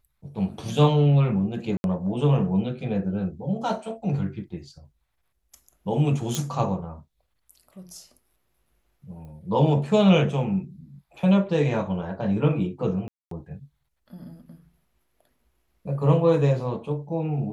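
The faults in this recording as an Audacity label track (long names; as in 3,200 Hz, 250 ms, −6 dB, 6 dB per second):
1.770000	1.840000	drop-out 71 ms
6.350000	6.350000	click −11 dBFS
9.250000	9.250000	click −35 dBFS
13.080000	13.310000	drop-out 233 ms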